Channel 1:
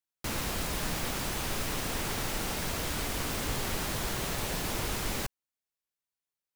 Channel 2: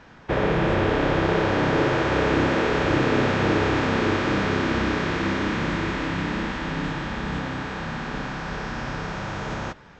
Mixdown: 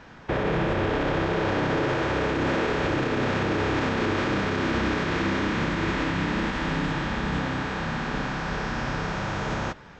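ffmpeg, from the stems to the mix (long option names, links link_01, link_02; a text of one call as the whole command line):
ffmpeg -i stem1.wav -i stem2.wav -filter_complex "[0:a]lowpass=frequency=7000:width=0.5412,lowpass=frequency=7000:width=1.3066,adelay=1650,volume=-16dB,asplit=3[link_01][link_02][link_03];[link_01]atrim=end=5.06,asetpts=PTS-STARTPTS,afade=type=out:start_time=5.056:duration=0.004:curve=hsin[link_04];[link_02]atrim=start=5.06:end=6.39,asetpts=PTS-STARTPTS,volume=0[link_05];[link_03]atrim=start=6.39,asetpts=PTS-STARTPTS,afade=type=in:duration=0.004:curve=hsin[link_06];[link_04][link_05][link_06]concat=n=3:v=0:a=1[link_07];[1:a]volume=1.5dB[link_08];[link_07][link_08]amix=inputs=2:normalize=0,alimiter=limit=-16.5dB:level=0:latency=1:release=55" out.wav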